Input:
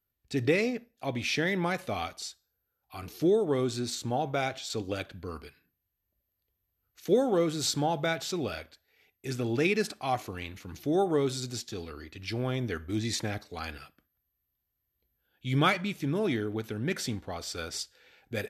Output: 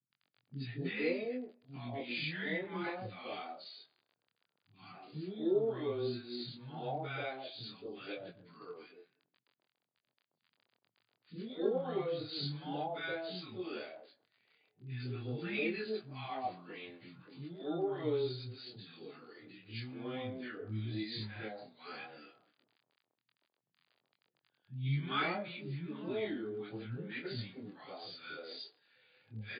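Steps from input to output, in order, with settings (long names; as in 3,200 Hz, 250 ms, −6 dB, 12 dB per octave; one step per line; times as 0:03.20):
time stretch by phase vocoder 1.6×
surface crackle 21 per second −42 dBFS
chorus effect 0.12 Hz, depth 5.3 ms
brick-wall band-pass 100–4,900 Hz
three-band delay without the direct sound lows, highs, mids 110/240 ms, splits 240/930 Hz
level −2.5 dB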